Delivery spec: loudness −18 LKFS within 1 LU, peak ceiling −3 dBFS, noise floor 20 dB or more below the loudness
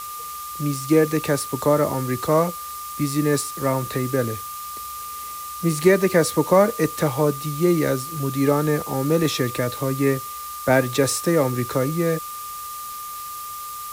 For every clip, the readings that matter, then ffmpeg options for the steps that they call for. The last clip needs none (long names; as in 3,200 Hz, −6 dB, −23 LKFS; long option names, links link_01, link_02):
interfering tone 1,200 Hz; level of the tone −32 dBFS; background noise floor −33 dBFS; target noise floor −43 dBFS; integrated loudness −22.5 LKFS; sample peak −4.0 dBFS; target loudness −18.0 LKFS
→ -af "bandreject=frequency=1200:width=30"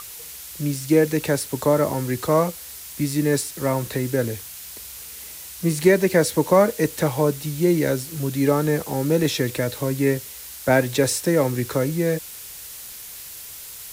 interfering tone none found; background noise floor −38 dBFS; target noise floor −42 dBFS
→ -af "afftdn=noise_reduction=6:noise_floor=-38"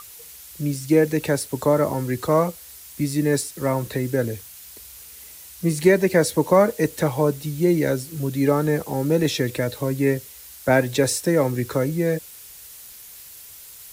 background noise floor −43 dBFS; integrated loudness −22.0 LKFS; sample peak −4.5 dBFS; target loudness −18.0 LKFS
→ -af "volume=4dB,alimiter=limit=-3dB:level=0:latency=1"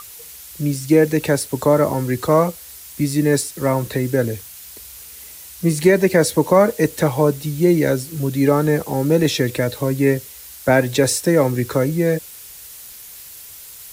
integrated loudness −18.0 LKFS; sample peak −3.0 dBFS; background noise floor −39 dBFS